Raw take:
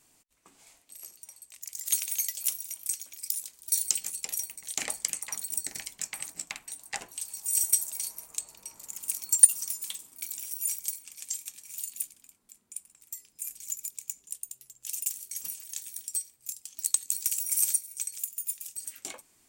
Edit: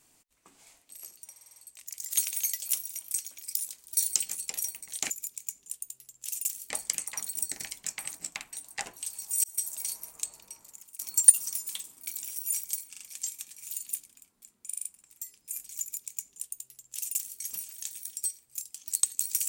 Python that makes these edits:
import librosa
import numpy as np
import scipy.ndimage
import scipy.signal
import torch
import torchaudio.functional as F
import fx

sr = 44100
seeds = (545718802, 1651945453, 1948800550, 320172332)

y = fx.edit(x, sr, fx.stutter(start_s=1.31, slice_s=0.05, count=6),
    fx.fade_in_span(start_s=7.59, length_s=0.35),
    fx.fade_out_to(start_s=8.47, length_s=0.67, floor_db=-23.0),
    fx.stutter(start_s=11.05, slice_s=0.04, count=3),
    fx.stutter(start_s=12.76, slice_s=0.04, count=5),
    fx.duplicate(start_s=13.71, length_s=1.6, to_s=4.85), tone=tone)